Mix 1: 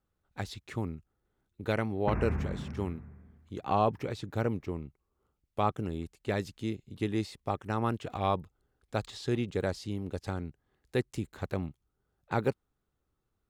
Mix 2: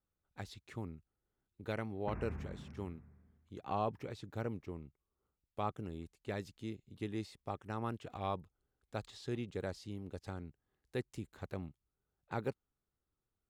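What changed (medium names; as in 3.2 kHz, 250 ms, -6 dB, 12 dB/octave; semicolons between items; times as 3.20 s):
speech -9.0 dB; background -11.5 dB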